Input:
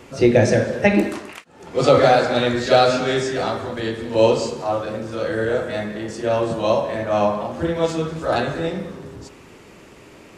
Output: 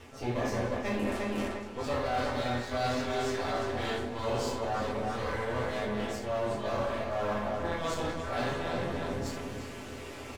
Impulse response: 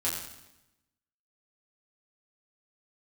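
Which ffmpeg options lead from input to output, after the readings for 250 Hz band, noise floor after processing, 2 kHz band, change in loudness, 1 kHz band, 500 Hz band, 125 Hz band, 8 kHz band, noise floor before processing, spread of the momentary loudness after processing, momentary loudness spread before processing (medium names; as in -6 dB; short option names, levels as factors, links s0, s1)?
-12.0 dB, -43 dBFS, -10.5 dB, -13.5 dB, -10.5 dB, -14.0 dB, -11.0 dB, -9.5 dB, -45 dBFS, 5 LU, 12 LU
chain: -filter_complex "[0:a]bandreject=f=45.56:t=h:w=4,bandreject=f=91.12:t=h:w=4,bandreject=f=136.68:t=h:w=4,bandreject=f=182.24:t=h:w=4,bandreject=f=227.8:t=h:w=4,bandreject=f=273.36:t=h:w=4,bandreject=f=318.92:t=h:w=4,aeval=exprs='max(val(0),0)':c=same,asplit=2[s0][s1];[s1]adelay=351,lowpass=f=3600:p=1,volume=0.398,asplit=2[s2][s3];[s3]adelay=351,lowpass=f=3600:p=1,volume=0.27,asplit=2[s4][s5];[s5]adelay=351,lowpass=f=3600:p=1,volume=0.27[s6];[s0][s2][s4][s6]amix=inputs=4:normalize=0[s7];[1:a]atrim=start_sample=2205,atrim=end_sample=4410[s8];[s7][s8]afir=irnorm=-1:irlink=0,areverse,acompressor=threshold=0.0316:ratio=6,areverse"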